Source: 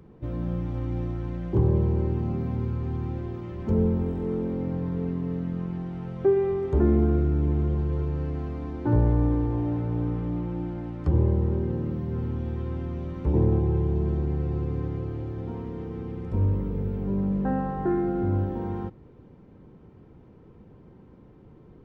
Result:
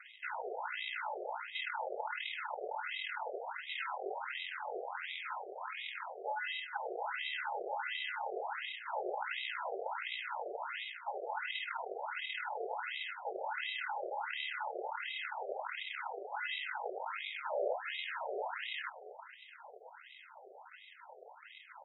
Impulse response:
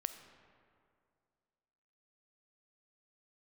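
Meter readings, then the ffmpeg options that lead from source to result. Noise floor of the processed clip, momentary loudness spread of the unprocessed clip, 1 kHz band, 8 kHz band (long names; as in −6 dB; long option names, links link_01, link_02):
−57 dBFS, 11 LU, +1.0 dB, can't be measured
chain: -filter_complex "[0:a]afftfilt=real='real(if(between(b,1,1012),(2*floor((b-1)/92)+1)*92-b,b),0)':imag='imag(if(between(b,1,1012),(2*floor((b-1)/92)+1)*92-b,b),0)*if(between(b,1,1012),-1,1)':win_size=2048:overlap=0.75,tiltshelf=frequency=810:gain=-7,acrusher=samples=38:mix=1:aa=0.000001,aeval=exprs='0.531*(cos(1*acos(clip(val(0)/0.531,-1,1)))-cos(1*PI/2))+0.00335*(cos(3*acos(clip(val(0)/0.531,-1,1)))-cos(3*PI/2))+0.00473*(cos(5*acos(clip(val(0)/0.531,-1,1)))-cos(5*PI/2))':channel_layout=same,areverse,acompressor=threshold=-28dB:ratio=5,areverse,aeval=exprs='abs(val(0))':channel_layout=same,aecho=1:1:424|848|1272|1696:0.141|0.0622|0.0273|0.012,acrossover=split=330|3000[link_01][link_02][link_03];[link_02]acompressor=threshold=-40dB:ratio=2.5[link_04];[link_01][link_04][link_03]amix=inputs=3:normalize=0,highshelf=frequency=2500:gain=6,afftfilt=real='re*between(b*sr/1024,530*pow(2800/530,0.5+0.5*sin(2*PI*1.4*pts/sr))/1.41,530*pow(2800/530,0.5+0.5*sin(2*PI*1.4*pts/sr))*1.41)':imag='im*between(b*sr/1024,530*pow(2800/530,0.5+0.5*sin(2*PI*1.4*pts/sr))/1.41,530*pow(2800/530,0.5+0.5*sin(2*PI*1.4*pts/sr))*1.41)':win_size=1024:overlap=0.75,volume=9dB"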